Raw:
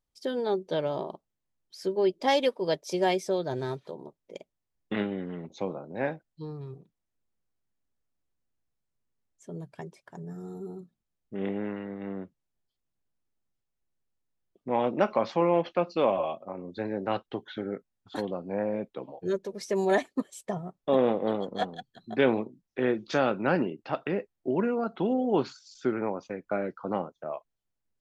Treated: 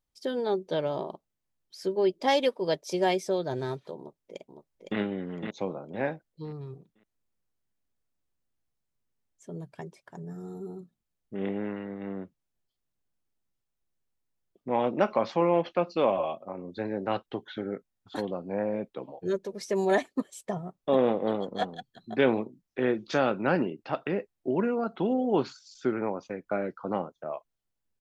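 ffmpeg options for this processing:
-filter_complex "[0:a]asplit=2[s0][s1];[s1]afade=t=in:st=3.97:d=0.01,afade=t=out:st=4.99:d=0.01,aecho=0:1:510|1020|1530|2040:0.530884|0.159265|0.0477796|0.0143339[s2];[s0][s2]amix=inputs=2:normalize=0"

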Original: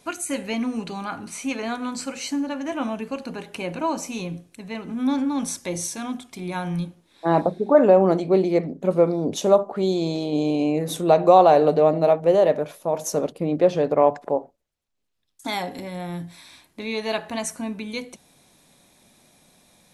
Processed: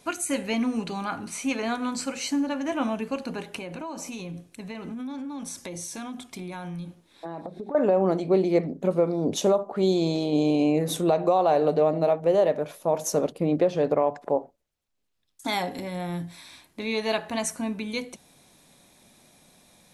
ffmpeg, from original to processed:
-filter_complex "[0:a]asettb=1/sr,asplit=3[s0][s1][s2];[s0]atrim=end=3.574[s3];[s1]atrim=start=3.57:end=7.75,asetpts=PTS-STARTPTS,afade=t=in:d=0.004:c=qsin,afade=t=out:st=4.176:d=0.004:c=qsin,acompressor=threshold=0.0251:ratio=8:attack=3.2:release=140:knee=1:detection=peak[s4];[s2]atrim=start=7.746[s5];[s3][s4]acrossfade=d=0.004:c1=hsin:c2=qsin[s6];[s6][s5]acrossfade=d=0.004:c1=qsin:c2=hsin,alimiter=limit=0.251:level=0:latency=1:release=296"

